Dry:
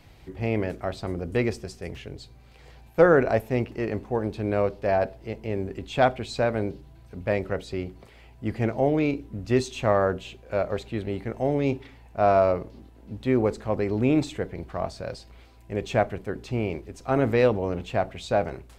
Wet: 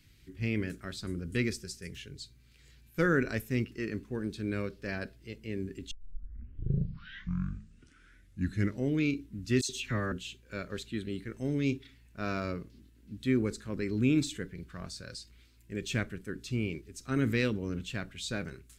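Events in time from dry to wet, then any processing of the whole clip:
5.91 tape start 3.02 s
9.61–10.12 dispersion lows, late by 79 ms, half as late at 2200 Hz
whole clip: spectral noise reduction 6 dB; EQ curve 270 Hz 0 dB, 400 Hz -6 dB, 750 Hz -23 dB, 1500 Hz -1 dB, 7500 Hz +7 dB; gain -3 dB

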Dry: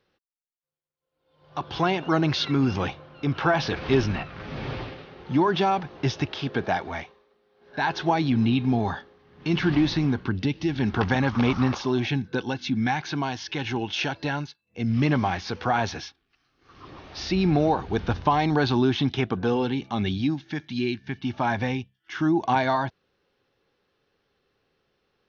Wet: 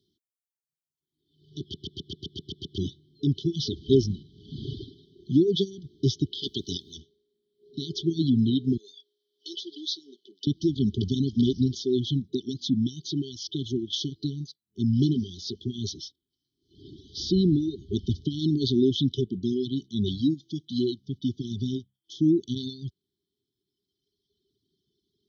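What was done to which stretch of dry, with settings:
1.61 stutter in place 0.13 s, 9 plays
6.42–6.96 spectral limiter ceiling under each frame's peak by 22 dB
8.77–10.47 HPF 560 Hz 24 dB/oct
whole clip: FFT band-reject 420–3000 Hz; reverb removal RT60 1.8 s; HPF 71 Hz; gain +2 dB

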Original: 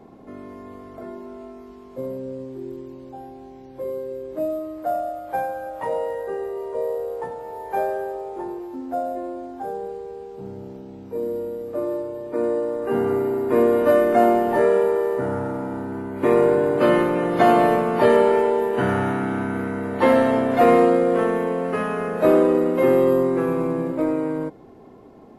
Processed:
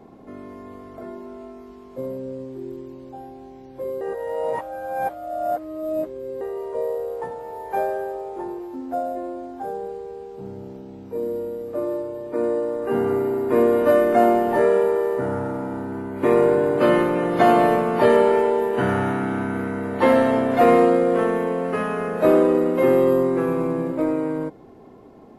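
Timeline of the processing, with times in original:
4.01–6.41 reverse

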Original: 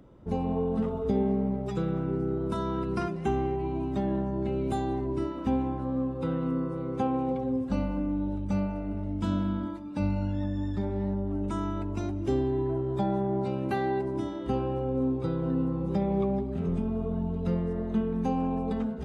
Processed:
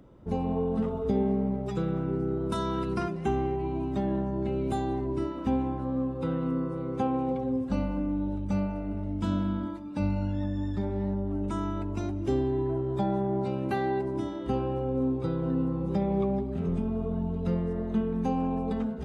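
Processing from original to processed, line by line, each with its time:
2.52–2.94 high shelf 2300 Hz +9 dB

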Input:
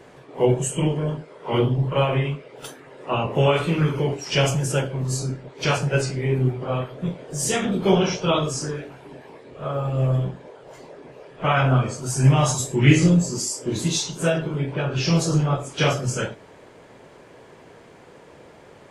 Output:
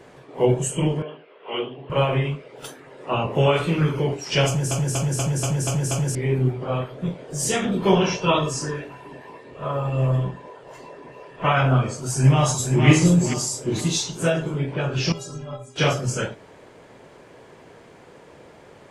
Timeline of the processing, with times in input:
1.02–1.9 speaker cabinet 490–3100 Hz, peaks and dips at 570 Hz -5 dB, 910 Hz -8 dB, 1400 Hz -4 dB, 2000 Hz -4 dB, 2800 Hz +7 dB
4.47 stutter in place 0.24 s, 7 plays
7.77–11.5 small resonant body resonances 1000/1800/2700 Hz, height 15 dB, ringing for 85 ms
12.16–12.86 echo throw 0.47 s, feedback 40%, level -5 dB
15.12–15.76 metallic resonator 120 Hz, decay 0.29 s, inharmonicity 0.03

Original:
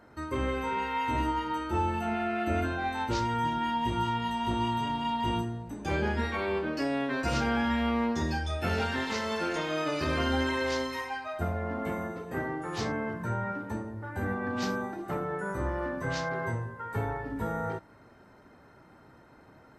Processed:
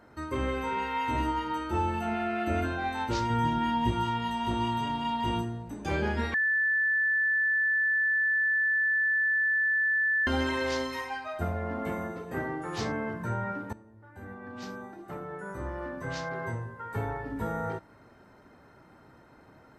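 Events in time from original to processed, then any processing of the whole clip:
3.3–3.91 low shelf 320 Hz +7 dB
6.34–10.27 bleep 1750 Hz -23 dBFS
13.73–17.4 fade in, from -18 dB

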